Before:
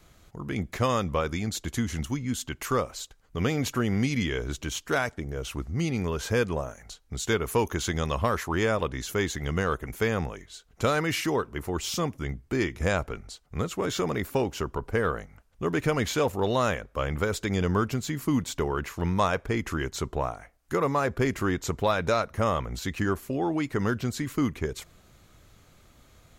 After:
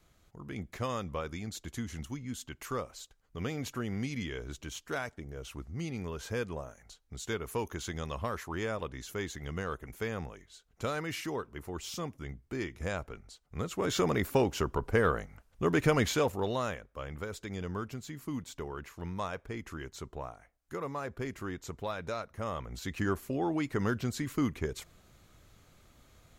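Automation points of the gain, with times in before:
13.4 s -9.5 dB
14 s -0.5 dB
15.99 s -0.5 dB
16.91 s -12 dB
22.38 s -12 dB
23.08 s -4 dB

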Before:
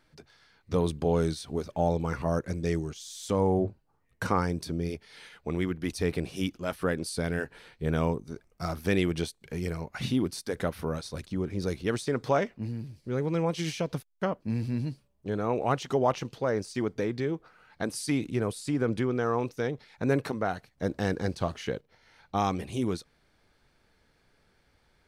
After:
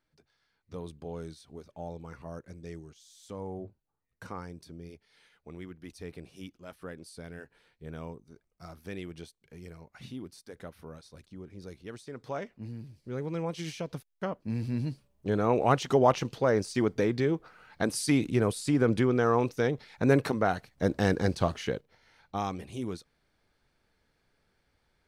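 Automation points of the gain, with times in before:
12.09 s -14 dB
12.73 s -5.5 dB
14.09 s -5.5 dB
15.3 s +3 dB
21.41 s +3 dB
22.52 s -6 dB

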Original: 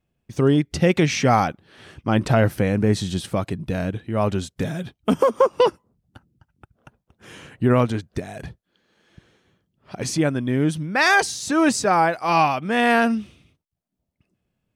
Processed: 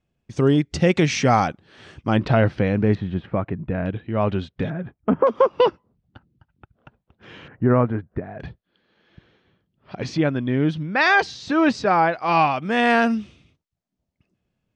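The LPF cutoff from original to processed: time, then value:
LPF 24 dB/oct
7700 Hz
from 2.17 s 4400 Hz
from 2.95 s 2200 Hz
from 3.86 s 3600 Hz
from 4.7 s 1900 Hz
from 5.27 s 4200 Hz
from 7.48 s 1800 Hz
from 8.4 s 4400 Hz
from 12.56 s 7300 Hz

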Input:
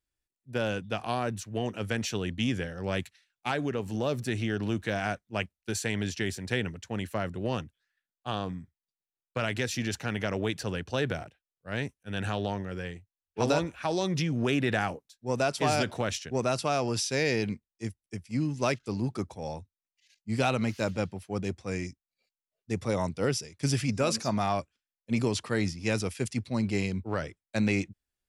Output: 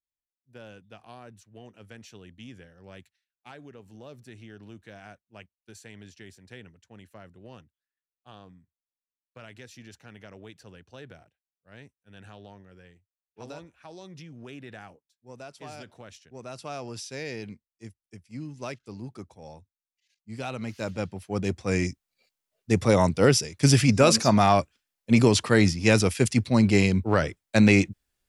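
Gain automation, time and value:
16.28 s -16 dB
16.71 s -8.5 dB
20.4 s -8.5 dB
20.96 s -1 dB
21.85 s +9 dB

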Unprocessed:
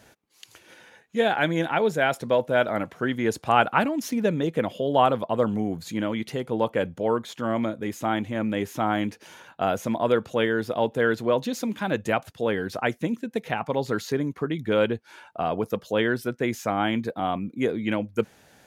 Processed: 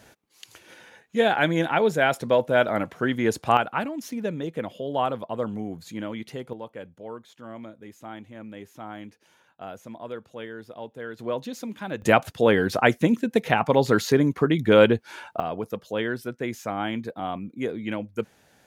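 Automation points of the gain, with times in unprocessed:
+1.5 dB
from 3.57 s -5.5 dB
from 6.53 s -14 dB
from 11.19 s -6 dB
from 12.02 s +6.5 dB
from 15.4 s -4 dB

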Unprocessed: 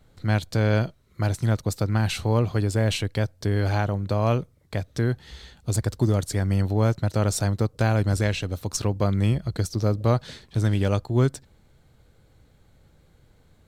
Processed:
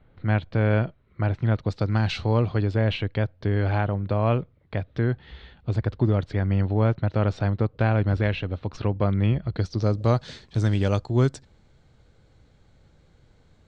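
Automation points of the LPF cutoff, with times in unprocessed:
LPF 24 dB/oct
1.42 s 2900 Hz
1.97 s 5400 Hz
2.96 s 3300 Hz
9.47 s 3300 Hz
9.98 s 7200 Hz

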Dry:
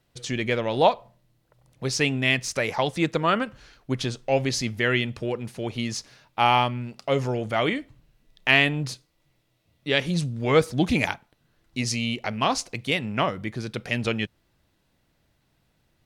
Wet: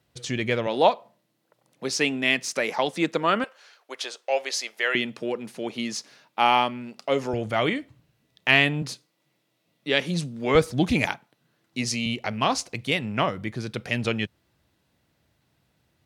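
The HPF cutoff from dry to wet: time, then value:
HPF 24 dB/oct
45 Hz
from 0.67 s 190 Hz
from 3.44 s 500 Hz
from 4.95 s 180 Hz
from 7.33 s 73 Hz
from 8.82 s 160 Hz
from 10.55 s 44 Hz
from 11.06 s 130 Hz
from 12.06 s 58 Hz

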